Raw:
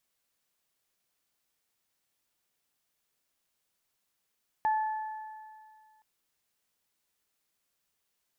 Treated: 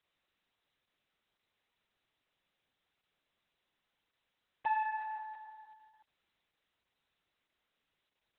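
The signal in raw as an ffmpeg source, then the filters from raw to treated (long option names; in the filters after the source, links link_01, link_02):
-f lavfi -i "aevalsrc='0.0708*pow(10,-3*t/2.08)*sin(2*PI*868*t)+0.0141*pow(10,-3*t/2.18)*sin(2*PI*1736*t)':duration=1.37:sample_rate=44100"
-filter_complex "[0:a]acrossover=split=910[link_01][link_02];[link_01]asoftclip=type=tanh:threshold=-40dB[link_03];[link_03][link_02]amix=inputs=2:normalize=0" -ar 48000 -c:a libopus -b:a 6k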